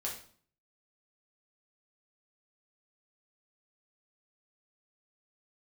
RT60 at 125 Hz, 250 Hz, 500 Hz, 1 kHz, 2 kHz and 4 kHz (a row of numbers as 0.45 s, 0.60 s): 0.70 s, 0.60 s, 0.50 s, 0.50 s, 0.45 s, 0.45 s